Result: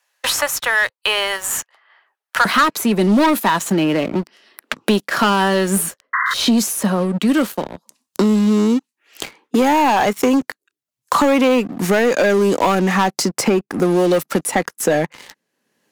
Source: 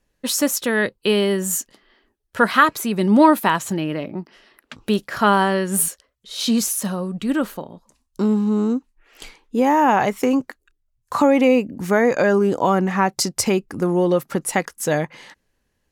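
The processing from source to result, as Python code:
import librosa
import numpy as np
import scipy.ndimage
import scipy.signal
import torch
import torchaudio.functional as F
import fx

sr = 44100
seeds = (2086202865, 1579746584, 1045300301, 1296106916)

y = fx.highpass(x, sr, hz=fx.steps((0.0, 760.0), (2.45, 170.0)), slope=24)
y = fx.leveller(y, sr, passes=3)
y = fx.spec_paint(y, sr, seeds[0], shape='noise', start_s=6.13, length_s=0.21, low_hz=1000.0, high_hz=2100.0, level_db=-18.0)
y = fx.band_squash(y, sr, depth_pct=70)
y = y * librosa.db_to_amplitude(-6.0)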